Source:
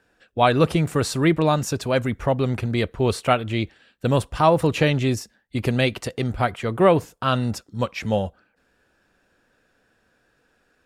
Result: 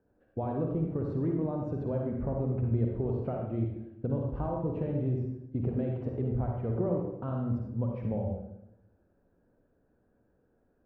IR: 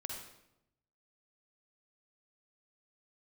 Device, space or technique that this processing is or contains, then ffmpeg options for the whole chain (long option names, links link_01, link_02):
television next door: -filter_complex "[0:a]acompressor=threshold=-25dB:ratio=6,lowpass=550[link_01];[1:a]atrim=start_sample=2205[link_02];[link_01][link_02]afir=irnorm=-1:irlink=0"